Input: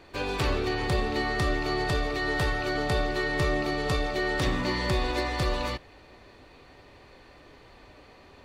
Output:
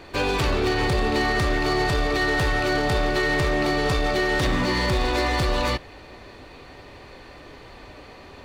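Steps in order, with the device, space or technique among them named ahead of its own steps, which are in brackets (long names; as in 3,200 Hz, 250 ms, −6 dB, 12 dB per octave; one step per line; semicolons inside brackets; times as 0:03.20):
limiter into clipper (brickwall limiter −20.5 dBFS, peak gain reduction 5 dB; hard clipping −26 dBFS, distortion −15 dB)
level +8.5 dB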